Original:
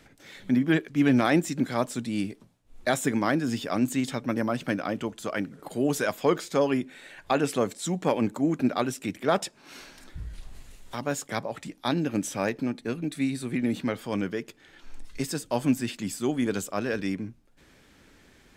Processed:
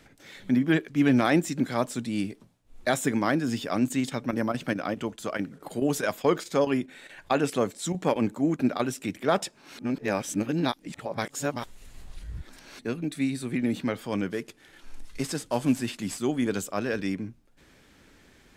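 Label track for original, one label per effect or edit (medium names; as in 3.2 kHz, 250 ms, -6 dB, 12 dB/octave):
3.690000	8.960000	square tremolo 4.7 Hz, depth 60%, duty 90%
9.780000	12.790000	reverse
14.300000	16.180000	CVSD coder 64 kbps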